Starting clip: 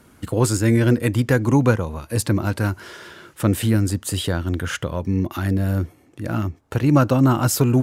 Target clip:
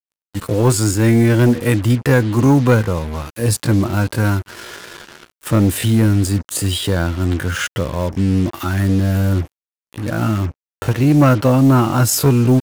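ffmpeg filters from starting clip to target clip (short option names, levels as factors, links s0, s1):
-af "atempo=0.62,asoftclip=type=tanh:threshold=0.335,acrusher=bits=5:mix=0:aa=0.5,volume=1.88"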